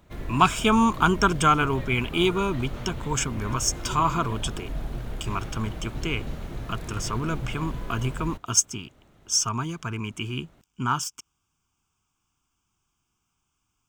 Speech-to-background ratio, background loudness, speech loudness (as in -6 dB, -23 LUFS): 11.0 dB, -36.5 LUFS, -25.5 LUFS